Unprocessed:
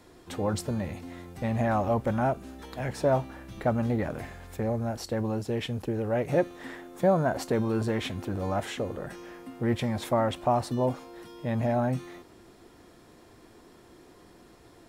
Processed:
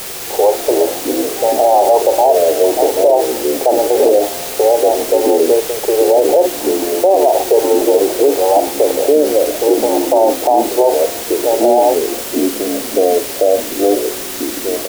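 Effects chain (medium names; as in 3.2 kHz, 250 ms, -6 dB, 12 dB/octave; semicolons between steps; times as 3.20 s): Chebyshev band-pass 380–890 Hz, order 4; in parallel at -11 dB: word length cut 6-bit, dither triangular; on the sum: ever faster or slower copies 218 ms, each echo -4 st, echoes 2, each echo -6 dB; doubling 46 ms -12 dB; loudness maximiser +21.5 dB; trim -1 dB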